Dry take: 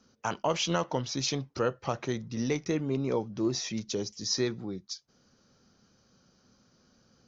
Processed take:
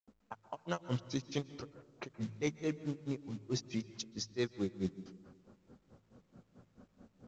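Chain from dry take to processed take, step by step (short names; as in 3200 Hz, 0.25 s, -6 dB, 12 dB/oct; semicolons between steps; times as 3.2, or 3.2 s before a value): reverse; compressor 12:1, threshold -39 dBFS, peak gain reduction 17 dB; reverse; companded quantiser 6-bit; grains 0.139 s, grains 4.6/s; de-hum 53.46 Hz, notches 3; reverb RT60 1.3 s, pre-delay 0.124 s, DRR 15.5 dB; low-pass opened by the level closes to 570 Hz, open at -46.5 dBFS; gain +10 dB; µ-law 128 kbps 16000 Hz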